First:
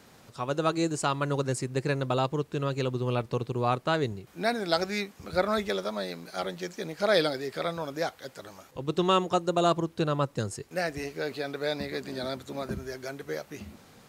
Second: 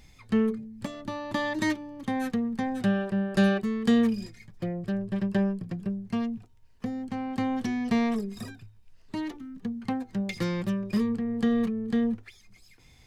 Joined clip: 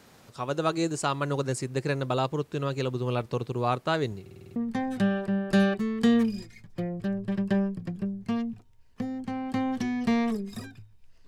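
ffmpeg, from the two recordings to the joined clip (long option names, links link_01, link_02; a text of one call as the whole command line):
ffmpeg -i cue0.wav -i cue1.wav -filter_complex "[0:a]apad=whole_dur=11.27,atrim=end=11.27,asplit=7[link_01][link_02][link_03][link_04][link_05][link_06][link_07];[link_01]atrim=end=4.262[link_08];[link_02]atrim=start=4.208:end=4.262[link_09];[link_03]atrim=start=4.208:end=4.262[link_10];[link_04]atrim=start=4.208:end=4.262[link_11];[link_05]atrim=start=4.208:end=4.262[link_12];[link_06]atrim=start=4.208:end=4.262[link_13];[link_07]atrim=start=4.208:end=4.262[link_14];[1:a]atrim=start=2.398:end=9.11[link_15];[link_08][link_09]acrossfade=duration=0.004:curve1=hsin:curve2=hsin[link_16];[link_16][link_10]acrossfade=duration=0.004:curve1=hsin:curve2=hsin[link_17];[link_17][link_11]acrossfade=duration=0.004:curve1=hsin:curve2=hsin[link_18];[link_18][link_12]acrossfade=duration=0.004:curve1=hsin:curve2=hsin[link_19];[link_19][link_13]acrossfade=duration=0.004:curve1=hsin:curve2=hsin[link_20];[link_20][link_14]acrossfade=duration=0.004:curve1=hsin:curve2=hsin[link_21];[link_21][link_15]acrossfade=duration=0.004:curve1=hsin:curve2=hsin" out.wav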